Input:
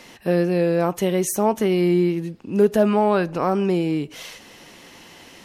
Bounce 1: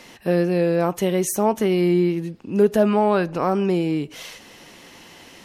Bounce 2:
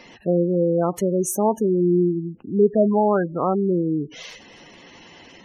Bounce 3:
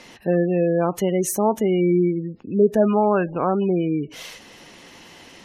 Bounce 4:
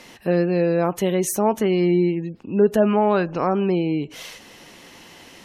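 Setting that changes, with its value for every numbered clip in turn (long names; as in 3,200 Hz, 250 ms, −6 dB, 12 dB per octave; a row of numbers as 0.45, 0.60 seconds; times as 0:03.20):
gate on every frequency bin, under each frame's peak: −60, −15, −25, −40 decibels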